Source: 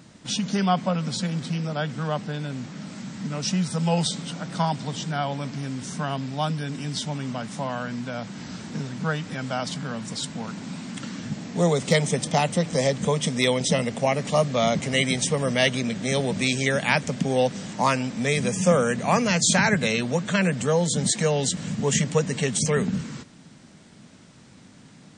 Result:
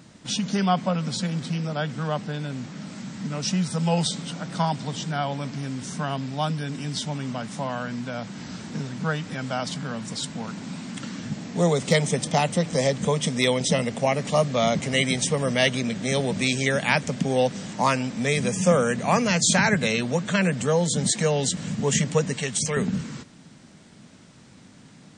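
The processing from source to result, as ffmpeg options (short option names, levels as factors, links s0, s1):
-filter_complex "[0:a]asettb=1/sr,asplit=3[s0][s1][s2];[s0]atrim=end=22.334[s3];[s1]atrim=start=22.33:end=22.77,asetpts=PTS-STARTPTS,afade=t=in:d=0.004:c=qsin,afade=t=out:st=0.436:d=0.004:c=qsin,equalizer=f=260:w=0.43:g=-6.5[s4];[s2]atrim=start=22.766[s5];[s3][s4]acrossfade=d=0.004:c1=hsin:c2=qsin[s6];[s6][s5]acrossfade=d=0.004:c1=qsin:c2=hsin"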